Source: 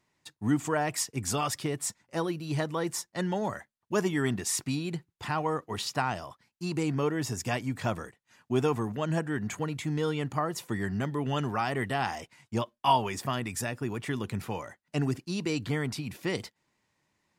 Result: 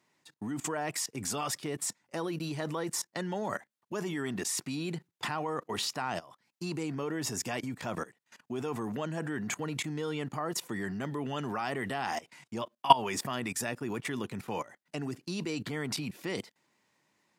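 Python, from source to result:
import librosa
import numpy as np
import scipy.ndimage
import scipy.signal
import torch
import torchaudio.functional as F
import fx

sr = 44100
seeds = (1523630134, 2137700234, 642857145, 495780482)

y = fx.level_steps(x, sr, step_db=20)
y = scipy.signal.sosfilt(scipy.signal.butter(2, 170.0, 'highpass', fs=sr, output='sos'), y)
y = y * librosa.db_to_amplitude(7.0)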